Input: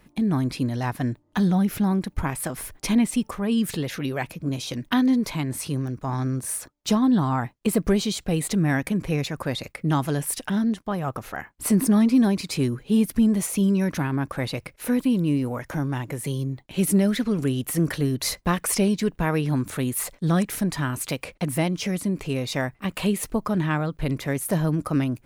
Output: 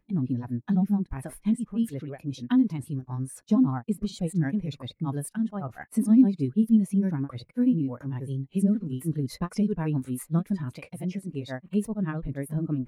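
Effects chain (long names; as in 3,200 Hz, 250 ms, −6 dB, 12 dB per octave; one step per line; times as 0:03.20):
reversed playback
upward compression, threshold −22 dBFS
reversed playback
time stretch by overlap-add 0.51×, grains 157 ms
every bin expanded away from the loudest bin 1.5 to 1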